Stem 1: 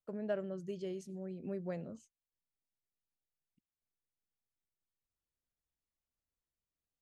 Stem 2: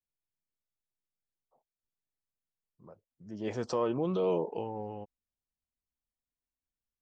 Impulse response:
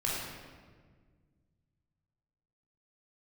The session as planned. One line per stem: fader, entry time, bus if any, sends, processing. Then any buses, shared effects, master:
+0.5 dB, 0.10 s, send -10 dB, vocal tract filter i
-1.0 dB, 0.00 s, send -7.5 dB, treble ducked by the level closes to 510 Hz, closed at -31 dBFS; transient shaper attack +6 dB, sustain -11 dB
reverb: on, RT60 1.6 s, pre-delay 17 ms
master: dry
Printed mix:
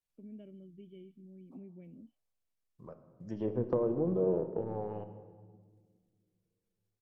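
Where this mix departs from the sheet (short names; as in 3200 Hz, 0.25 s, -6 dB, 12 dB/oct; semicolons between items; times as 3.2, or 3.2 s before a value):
stem 1: send off; stem 2: send -7.5 dB -> -13.5 dB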